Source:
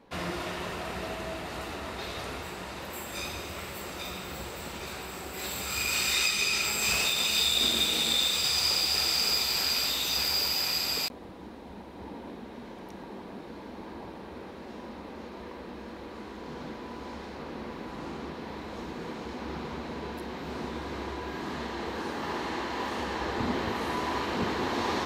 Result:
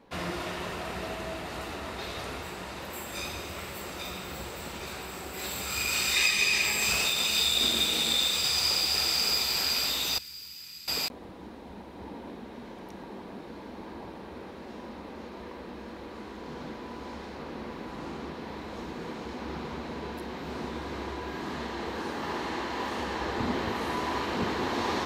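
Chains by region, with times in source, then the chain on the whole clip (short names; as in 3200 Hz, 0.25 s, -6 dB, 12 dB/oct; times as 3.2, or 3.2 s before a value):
6.16–6.84 Butterworth band-stop 1400 Hz, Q 4.9 + bell 1800 Hz +6.5 dB 1.1 oct
10.18–10.88 HPF 79 Hz + passive tone stack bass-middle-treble 6-0-2
whole clip: dry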